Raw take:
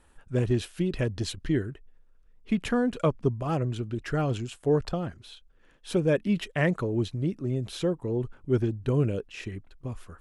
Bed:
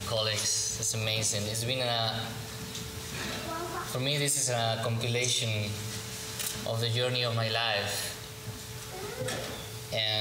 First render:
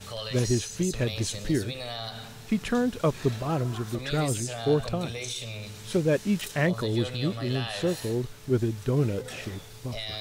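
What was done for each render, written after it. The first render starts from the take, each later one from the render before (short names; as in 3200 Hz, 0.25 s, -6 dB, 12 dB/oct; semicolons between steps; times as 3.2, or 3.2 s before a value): add bed -6.5 dB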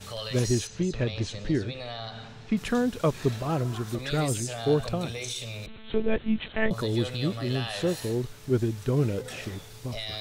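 0.67–2.57 air absorption 130 m; 5.66–6.71 monotone LPC vocoder at 8 kHz 220 Hz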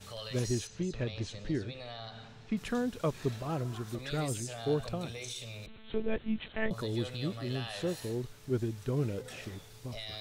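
gain -7 dB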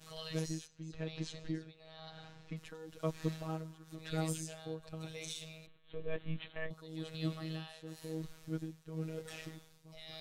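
robotiser 159 Hz; tremolo triangle 0.99 Hz, depth 85%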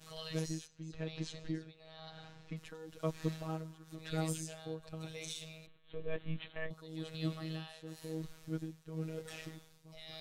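nothing audible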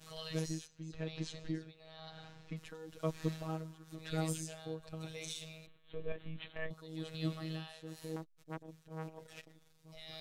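6.12–6.59 compressor, threshold -37 dBFS; 8.16–9.89 core saturation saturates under 1200 Hz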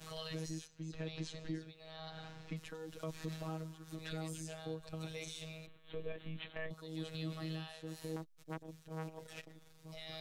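limiter -28 dBFS, peak gain reduction 8.5 dB; three-band squash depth 40%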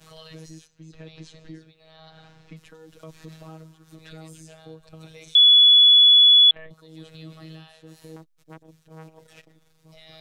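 5.35–6.51 bleep 3410 Hz -9.5 dBFS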